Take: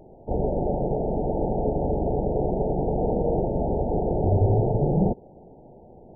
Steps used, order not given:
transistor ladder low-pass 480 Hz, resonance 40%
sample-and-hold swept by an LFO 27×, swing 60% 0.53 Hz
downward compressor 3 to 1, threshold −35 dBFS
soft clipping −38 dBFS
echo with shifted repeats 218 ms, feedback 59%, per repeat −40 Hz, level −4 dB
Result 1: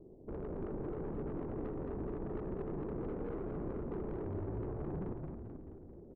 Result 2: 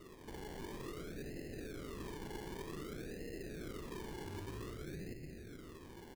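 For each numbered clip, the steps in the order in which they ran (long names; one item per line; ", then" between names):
sample-and-hold swept by an LFO, then transistor ladder low-pass, then downward compressor, then soft clipping, then echo with shifted repeats
downward compressor, then soft clipping, then transistor ladder low-pass, then echo with shifted repeats, then sample-and-hold swept by an LFO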